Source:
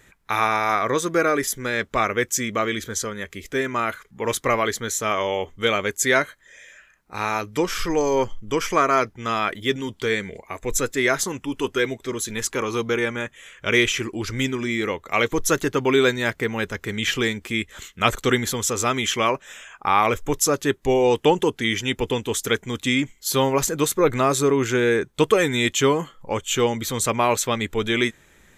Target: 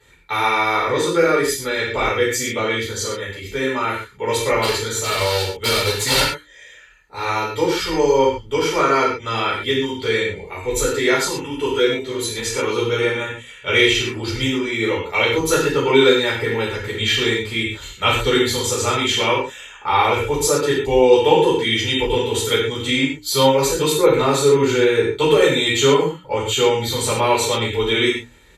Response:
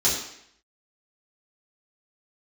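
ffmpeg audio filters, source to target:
-filter_complex "[0:a]bandreject=f=60:t=h:w=6,bandreject=f=120:t=h:w=6,bandreject=f=180:t=h:w=6,bandreject=f=240:t=h:w=6,bandreject=f=300:t=h:w=6,asettb=1/sr,asplit=3[a][b][c];[a]atrim=end=4.624[d];[b]atrim=start=4.62:end=6.2,asetpts=PTS-STARTPTS,afade=t=in:d=0.004:c=qsin,afade=t=out:st=1.576:d=0.004:c=qsin,aeval=exprs='(mod(4.73*val(0)+1,2)-1)/4.73':c=same[e];[c]atrim=start=6.196[f];[d][e]acrossfade=d=0.004:c1=hsin:c2=qsin[g];[g][f]acrossfade=d=0.004:c1=qsin:c2=hsin,aecho=1:1:2.2:0.58[h];[1:a]atrim=start_sample=2205,atrim=end_sample=4410,asetrate=29106,aresample=44100[i];[h][i]afir=irnorm=-1:irlink=0,volume=-14dB"

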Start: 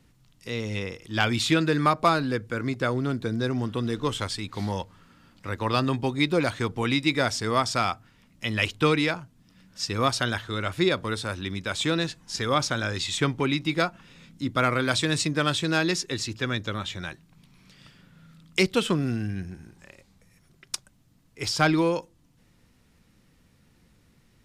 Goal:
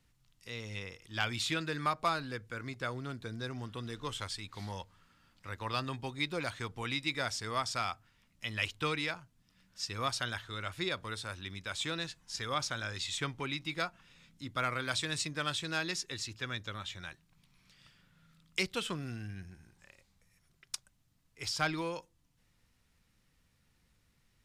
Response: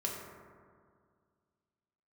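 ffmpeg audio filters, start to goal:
-af "equalizer=f=280:w=0.49:g=-8.5,volume=-7.5dB"

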